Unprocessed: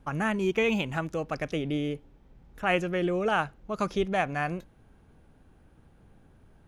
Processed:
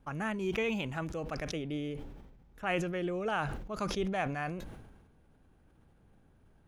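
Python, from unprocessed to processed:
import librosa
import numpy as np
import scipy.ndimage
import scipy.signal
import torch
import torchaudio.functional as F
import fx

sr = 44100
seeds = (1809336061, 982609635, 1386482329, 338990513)

y = fx.sustainer(x, sr, db_per_s=45.0)
y = y * librosa.db_to_amplitude(-7.0)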